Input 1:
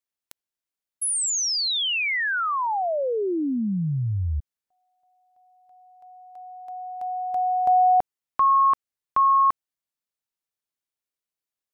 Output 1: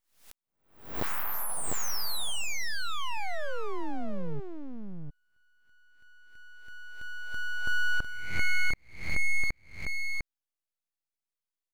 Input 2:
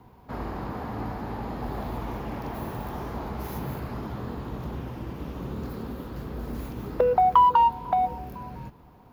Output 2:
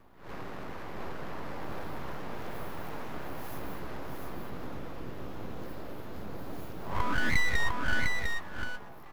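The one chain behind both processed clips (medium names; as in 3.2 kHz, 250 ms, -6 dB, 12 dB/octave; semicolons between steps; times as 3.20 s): reverse spectral sustain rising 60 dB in 0.51 s; full-wave rectifier; delay 702 ms -4 dB; trim -6.5 dB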